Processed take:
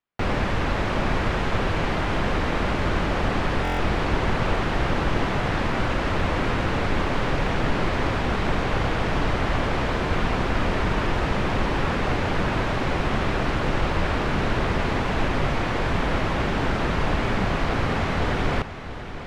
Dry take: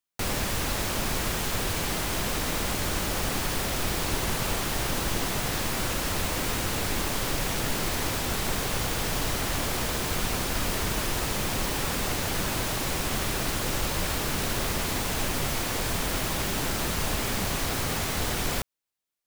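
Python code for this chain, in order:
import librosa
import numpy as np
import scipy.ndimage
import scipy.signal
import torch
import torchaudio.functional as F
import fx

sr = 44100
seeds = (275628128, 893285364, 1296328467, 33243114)

y = scipy.signal.sosfilt(scipy.signal.butter(2, 2200.0, 'lowpass', fs=sr, output='sos'), x)
y = y + 10.0 ** (-11.0 / 20.0) * np.pad(y, (int(687 * sr / 1000.0), 0))[:len(y)]
y = fx.buffer_glitch(y, sr, at_s=(3.63,), block=1024, repeats=6)
y = y * 10.0 ** (6.5 / 20.0)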